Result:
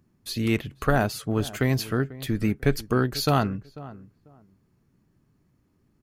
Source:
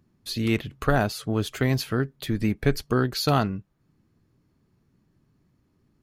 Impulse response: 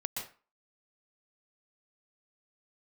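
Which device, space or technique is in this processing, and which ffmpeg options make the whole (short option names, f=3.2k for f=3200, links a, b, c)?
exciter from parts: -filter_complex "[0:a]asplit=2[a][b];[b]adelay=493,lowpass=f=1.1k:p=1,volume=-17dB,asplit=2[c][d];[d]adelay=493,lowpass=f=1.1k:p=1,volume=0.21[e];[a][c][e]amix=inputs=3:normalize=0,asplit=2[f][g];[g]highpass=f=3.6k:w=0.5412,highpass=f=3.6k:w=1.3066,asoftclip=type=tanh:threshold=-30dB,volume=-9dB[h];[f][h]amix=inputs=2:normalize=0"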